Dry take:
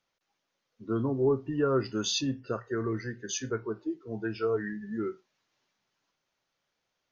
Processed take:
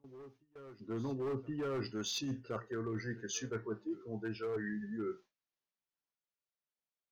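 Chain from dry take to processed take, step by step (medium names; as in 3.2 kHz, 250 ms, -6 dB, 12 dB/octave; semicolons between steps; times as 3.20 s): hard clipper -24.5 dBFS, distortion -13 dB; reverse echo 1069 ms -24 dB; gate with hold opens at -48 dBFS; reverse; compression, threshold -36 dBFS, peak gain reduction 9.5 dB; reverse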